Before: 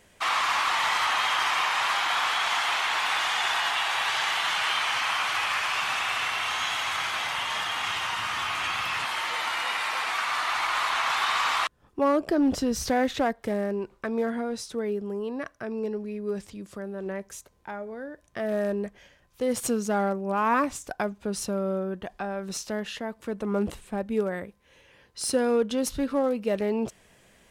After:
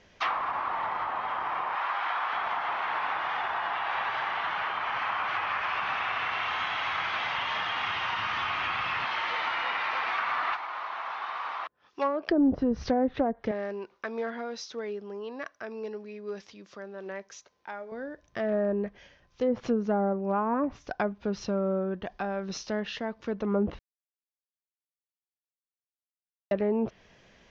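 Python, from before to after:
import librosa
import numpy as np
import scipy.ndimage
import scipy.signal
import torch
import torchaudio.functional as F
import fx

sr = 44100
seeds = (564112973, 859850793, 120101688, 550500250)

y = fx.highpass(x, sr, hz=590.0, slope=6, at=(1.75, 2.33))
y = fx.weighting(y, sr, curve='ITU-R 468', at=(10.52, 12.29), fade=0.02)
y = fx.highpass(y, sr, hz=680.0, slope=6, at=(13.51, 17.92))
y = fx.edit(y, sr, fx.silence(start_s=23.79, length_s=2.72), tone=tone)
y = fx.env_lowpass_down(y, sr, base_hz=690.0, full_db=-20.5)
y = scipy.signal.sosfilt(scipy.signal.butter(12, 6300.0, 'lowpass', fs=sr, output='sos'), y)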